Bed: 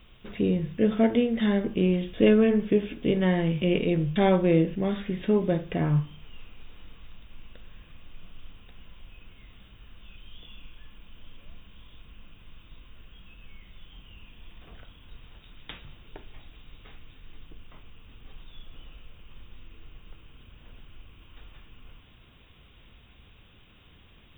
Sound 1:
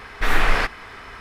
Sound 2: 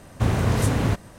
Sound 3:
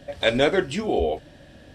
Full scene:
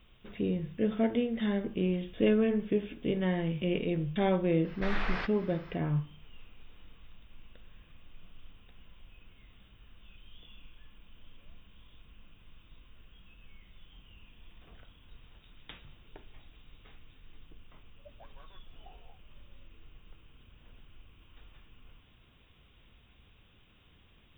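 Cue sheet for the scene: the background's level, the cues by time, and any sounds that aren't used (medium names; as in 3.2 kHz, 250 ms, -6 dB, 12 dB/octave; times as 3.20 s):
bed -6.5 dB
4.60 s: add 1 -14.5 dB, fades 0.10 s + low-pass 5 kHz 24 dB/octave
17.97 s: add 3 -14 dB + auto-wah 540–1100 Hz, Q 22, up, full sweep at -15.5 dBFS
not used: 2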